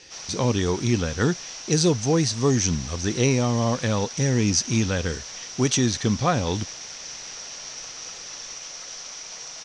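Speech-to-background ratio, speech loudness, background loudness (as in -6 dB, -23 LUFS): 11.5 dB, -23.5 LUFS, -35.0 LUFS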